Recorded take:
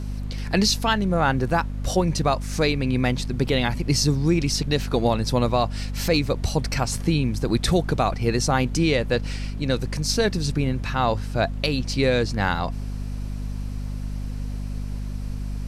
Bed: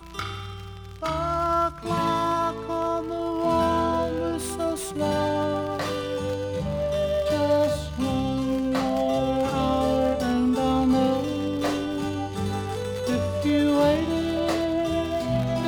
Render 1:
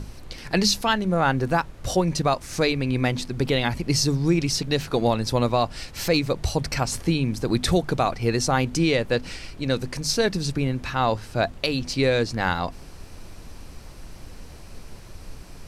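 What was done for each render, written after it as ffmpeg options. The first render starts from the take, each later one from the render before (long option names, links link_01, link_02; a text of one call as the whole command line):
ffmpeg -i in.wav -af "bandreject=frequency=50:width_type=h:width=6,bandreject=frequency=100:width_type=h:width=6,bandreject=frequency=150:width_type=h:width=6,bandreject=frequency=200:width_type=h:width=6,bandreject=frequency=250:width_type=h:width=6" out.wav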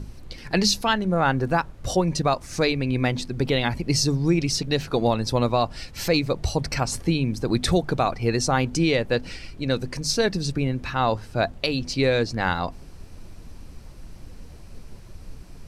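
ffmpeg -i in.wav -af "afftdn=noise_reduction=6:noise_floor=-42" out.wav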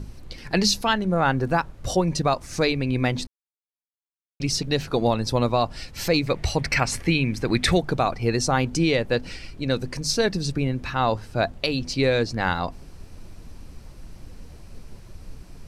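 ffmpeg -i in.wav -filter_complex "[0:a]asettb=1/sr,asplit=3[link_01][link_02][link_03];[link_01]atrim=end=6.274[link_04];[link_02]atrim=start=6.27:end=7.8,asetpts=PTS-STARTPTS,afade=type=in:duration=0.004:curve=qsin,afade=type=out:start_time=1.526:duration=0.004:curve=qsin,equalizer=frequency=2100:width_type=o:width=1:gain=11.5[link_05];[link_03]atrim=start=7.796[link_06];[link_04][link_05]acrossfade=duration=0.004:curve1=hsin:curve2=qsin[link_07];[link_07][link_06]acrossfade=duration=0.004:curve1=qsin:curve2=hsin,asplit=3[link_08][link_09][link_10];[link_08]atrim=end=3.27,asetpts=PTS-STARTPTS,afade=type=out:start_time=3.266:duration=0.004:curve=hsin[link_11];[link_09]atrim=start=3.27:end=4.4,asetpts=PTS-STARTPTS,volume=0[link_12];[link_10]atrim=start=4.4,asetpts=PTS-STARTPTS,afade=type=in:duration=0.004:curve=hsin[link_13];[link_11][link_12][link_13]concat=n=3:v=0:a=1" out.wav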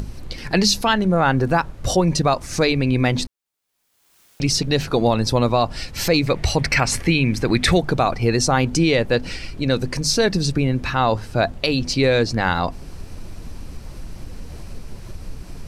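ffmpeg -i in.wav -filter_complex "[0:a]asplit=2[link_01][link_02];[link_02]alimiter=limit=-18dB:level=0:latency=1,volume=1dB[link_03];[link_01][link_03]amix=inputs=2:normalize=0,acompressor=mode=upward:threshold=-27dB:ratio=2.5" out.wav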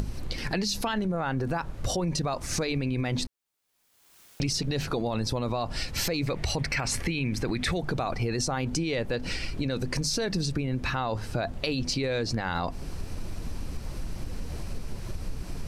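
ffmpeg -i in.wav -af "alimiter=limit=-14dB:level=0:latency=1:release=30,acompressor=threshold=-26dB:ratio=4" out.wav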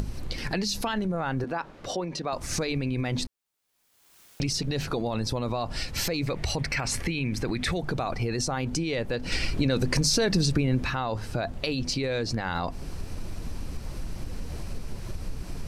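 ffmpeg -i in.wav -filter_complex "[0:a]asettb=1/sr,asplit=3[link_01][link_02][link_03];[link_01]atrim=end=1.444[link_04];[link_02]atrim=start=1.44:end=2.33,asetpts=PTS-STARTPTS,afade=type=in:duration=0.004:curve=qsin,afade=type=out:start_time=0.886:duration=0.004:curve=qsin,acrossover=split=200 5400:gain=0.112 1 0.224[link_05][link_06][link_07];[link_05][link_06][link_07]amix=inputs=3:normalize=0[link_08];[link_03]atrim=start=2.326[link_09];[link_04][link_08]acrossfade=duration=0.004:curve1=hsin:curve2=qsin[link_10];[link_10][link_09]acrossfade=duration=0.004:curve1=qsin:curve2=hsin,asettb=1/sr,asplit=3[link_11][link_12][link_13];[link_11]atrim=end=9.324[link_14];[link_12]atrim=start=9.32:end=10.84,asetpts=PTS-STARTPTS,afade=type=in:duration=0.004:curve=qsin,afade=type=out:start_time=1.516:duration=0.004:curve=qsin,acontrast=27[link_15];[link_13]atrim=start=10.836[link_16];[link_14][link_15]acrossfade=duration=0.004:curve1=hsin:curve2=qsin[link_17];[link_17][link_16]acrossfade=duration=0.004:curve1=qsin:curve2=hsin" out.wav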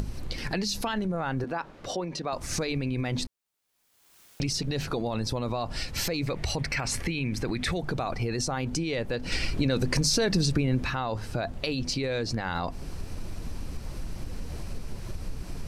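ffmpeg -i in.wav -af "volume=-1dB" out.wav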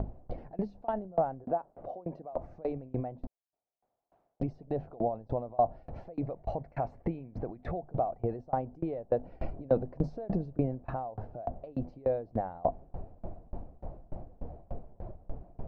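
ffmpeg -i in.wav -af "lowpass=frequency=690:width_type=q:width=4.9,aeval=exprs='val(0)*pow(10,-28*if(lt(mod(3.4*n/s,1),2*abs(3.4)/1000),1-mod(3.4*n/s,1)/(2*abs(3.4)/1000),(mod(3.4*n/s,1)-2*abs(3.4)/1000)/(1-2*abs(3.4)/1000))/20)':channel_layout=same" out.wav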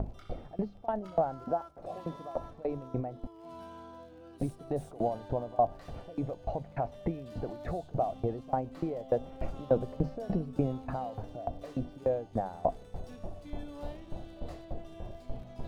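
ffmpeg -i in.wav -i bed.wav -filter_complex "[1:a]volume=-25dB[link_01];[0:a][link_01]amix=inputs=2:normalize=0" out.wav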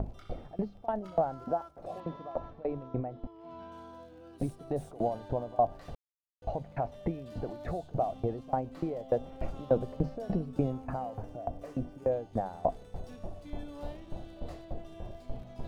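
ffmpeg -i in.wav -filter_complex "[0:a]asettb=1/sr,asplit=3[link_01][link_02][link_03];[link_01]atrim=end=2.004[link_04];[link_02]atrim=start=2:end=3.72,asetpts=PTS-STARTPTS,afade=type=in:duration=0.004:curve=qsin,afade=type=out:start_time=1.716:duration=0.004:curve=qsin,lowpass=3500[link_05];[link_03]atrim=start=3.716[link_06];[link_04][link_05]acrossfade=duration=0.004:curve1=hsin:curve2=qsin[link_07];[link_07][link_06]acrossfade=duration=0.004:curve1=qsin:curve2=hsin,asettb=1/sr,asplit=3[link_08][link_09][link_10];[link_08]atrim=end=10.704[link_11];[link_09]atrim=start=10.7:end=12.12,asetpts=PTS-STARTPTS,afade=type=in:duration=0.004:curve=qsin,afade=type=out:start_time=1.416:duration=0.004:curve=qsin,equalizer=frequency=3800:width=2.3:gain=-9.5[link_12];[link_10]atrim=start=12.116[link_13];[link_11][link_12]acrossfade=duration=0.004:curve1=hsin:curve2=qsin[link_14];[link_14][link_13]acrossfade=duration=0.004:curve1=qsin:curve2=hsin,asplit=3[link_15][link_16][link_17];[link_15]atrim=end=5.95,asetpts=PTS-STARTPTS,afade=type=out:start_time=5.946:duration=0.004:curve=hsin[link_18];[link_16]atrim=start=5.95:end=6.42,asetpts=PTS-STARTPTS,volume=0[link_19];[link_17]atrim=start=6.42,asetpts=PTS-STARTPTS,afade=type=in:duration=0.004:curve=hsin[link_20];[link_18][link_19][link_20]concat=n=3:v=0:a=1" out.wav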